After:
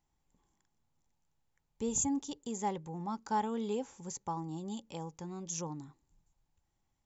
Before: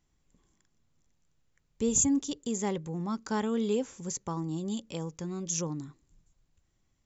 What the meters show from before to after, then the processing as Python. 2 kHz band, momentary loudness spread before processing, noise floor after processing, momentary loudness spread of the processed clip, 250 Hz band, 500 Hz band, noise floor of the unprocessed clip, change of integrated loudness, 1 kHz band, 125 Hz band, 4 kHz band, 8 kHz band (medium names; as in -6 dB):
-6.5 dB, 12 LU, -81 dBFS, 11 LU, -7.0 dB, -6.5 dB, -74 dBFS, -6.0 dB, +3.0 dB, -7.0 dB, -7.0 dB, no reading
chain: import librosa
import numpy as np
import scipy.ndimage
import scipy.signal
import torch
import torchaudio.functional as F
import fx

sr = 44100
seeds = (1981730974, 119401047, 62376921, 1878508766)

y = fx.peak_eq(x, sr, hz=850.0, db=12.5, octaves=0.39)
y = F.gain(torch.from_numpy(y), -7.0).numpy()